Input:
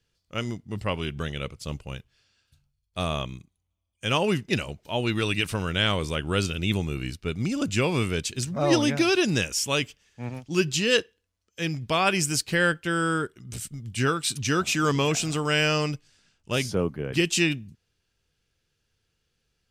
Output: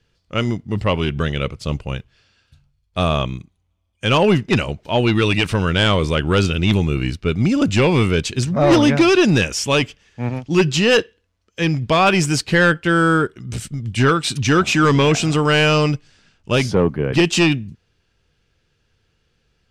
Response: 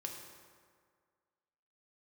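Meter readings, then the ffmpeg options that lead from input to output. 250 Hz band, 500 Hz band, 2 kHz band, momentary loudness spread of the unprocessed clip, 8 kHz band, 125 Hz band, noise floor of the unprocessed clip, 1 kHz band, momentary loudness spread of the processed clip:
+10.0 dB, +9.5 dB, +7.5 dB, 13 LU, +2.5 dB, +10.5 dB, -77 dBFS, +9.0 dB, 11 LU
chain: -af "aeval=exprs='0.422*sin(PI/2*2.24*val(0)/0.422)':c=same,aemphasis=mode=reproduction:type=50fm"

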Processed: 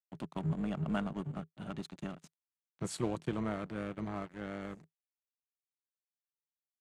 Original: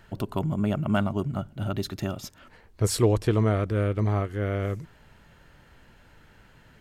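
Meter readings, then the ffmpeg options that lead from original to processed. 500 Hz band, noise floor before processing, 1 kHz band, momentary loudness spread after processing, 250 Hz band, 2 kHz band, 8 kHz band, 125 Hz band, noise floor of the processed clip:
-14.0 dB, -56 dBFS, -10.0 dB, 9 LU, -9.0 dB, -9.5 dB, -13.5 dB, -15.0 dB, under -85 dBFS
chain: -af "aeval=exprs='sgn(val(0))*max(abs(val(0))-0.0133,0)':c=same,highpass=f=150:w=0.5412,highpass=f=150:w=1.3066,equalizer=f=160:t=q:w=4:g=10,equalizer=f=440:t=q:w=4:g=-9,equalizer=f=5.3k:t=q:w=4:g=-6,lowpass=f=9.6k:w=0.5412,lowpass=f=9.6k:w=1.3066,tremolo=f=250:d=0.4,volume=-7dB"

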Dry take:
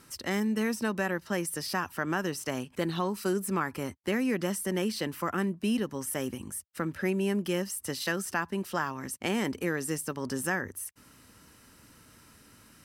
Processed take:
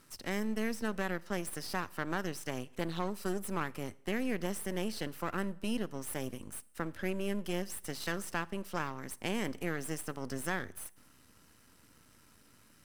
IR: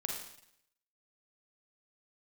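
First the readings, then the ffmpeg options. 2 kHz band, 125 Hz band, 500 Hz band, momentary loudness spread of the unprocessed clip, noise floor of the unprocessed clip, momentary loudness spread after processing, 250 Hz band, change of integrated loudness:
-5.5 dB, -5.0 dB, -6.0 dB, 5 LU, -58 dBFS, 5 LU, -6.5 dB, -6.0 dB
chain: -filter_complex "[0:a]aeval=exprs='if(lt(val(0),0),0.251*val(0),val(0))':c=same,asplit=2[a][b];[1:a]atrim=start_sample=2205[c];[b][c]afir=irnorm=-1:irlink=0,volume=-19.5dB[d];[a][d]amix=inputs=2:normalize=0,volume=-4dB"

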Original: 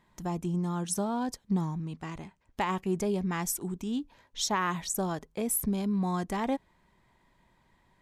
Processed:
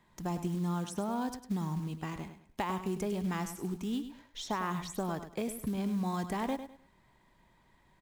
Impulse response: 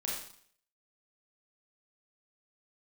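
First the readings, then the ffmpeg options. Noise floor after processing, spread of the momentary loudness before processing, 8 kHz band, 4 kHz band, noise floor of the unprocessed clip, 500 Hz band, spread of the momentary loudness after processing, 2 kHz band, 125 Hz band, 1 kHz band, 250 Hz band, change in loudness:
-67 dBFS, 8 LU, -12.0 dB, -6.0 dB, -68 dBFS, -4.0 dB, 6 LU, -5.0 dB, -2.5 dB, -3.5 dB, -3.0 dB, -4.5 dB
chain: -filter_complex "[0:a]acrossover=split=95|1300|2800[a][b][c][d];[a]acompressor=threshold=-52dB:ratio=4[e];[b]acompressor=threshold=-32dB:ratio=4[f];[c]acompressor=threshold=-46dB:ratio=4[g];[d]acompressor=threshold=-48dB:ratio=4[h];[e][f][g][h]amix=inputs=4:normalize=0,acrusher=bits=6:mode=log:mix=0:aa=0.000001,aecho=1:1:102|204|306:0.299|0.0776|0.0202"

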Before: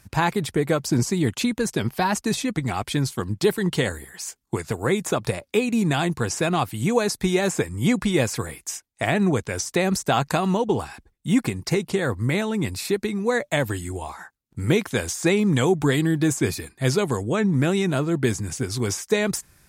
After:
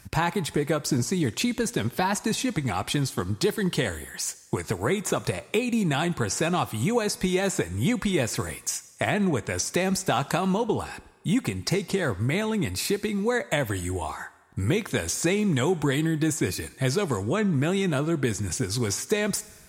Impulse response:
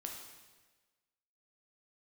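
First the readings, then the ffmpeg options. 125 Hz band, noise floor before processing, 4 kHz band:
-3.0 dB, -67 dBFS, -1.5 dB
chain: -filter_complex "[0:a]acompressor=threshold=-29dB:ratio=2,asplit=2[a][b];[1:a]atrim=start_sample=2205,lowshelf=f=460:g=-8.5[c];[b][c]afir=irnorm=-1:irlink=0,volume=-8.5dB[d];[a][d]amix=inputs=2:normalize=0,volume=2dB"

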